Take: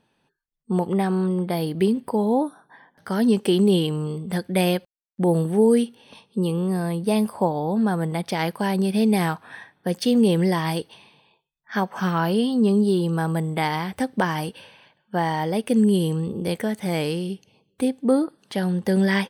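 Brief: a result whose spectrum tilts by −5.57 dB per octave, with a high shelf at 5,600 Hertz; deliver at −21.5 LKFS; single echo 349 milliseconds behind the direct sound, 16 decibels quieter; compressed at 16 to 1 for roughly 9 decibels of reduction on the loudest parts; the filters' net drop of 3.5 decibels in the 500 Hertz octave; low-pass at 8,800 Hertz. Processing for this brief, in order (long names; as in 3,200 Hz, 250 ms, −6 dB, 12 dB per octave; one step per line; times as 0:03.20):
low-pass filter 8,800 Hz
parametric band 500 Hz −4.5 dB
high-shelf EQ 5,600 Hz +4.5 dB
downward compressor 16 to 1, threshold −24 dBFS
single-tap delay 349 ms −16 dB
level +8 dB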